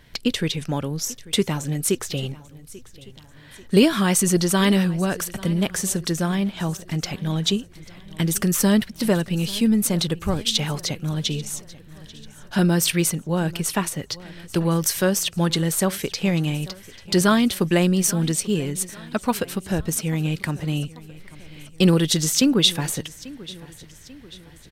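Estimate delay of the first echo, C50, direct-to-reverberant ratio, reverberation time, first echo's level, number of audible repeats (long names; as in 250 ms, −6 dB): 840 ms, no reverb audible, no reverb audible, no reverb audible, −20.0 dB, 3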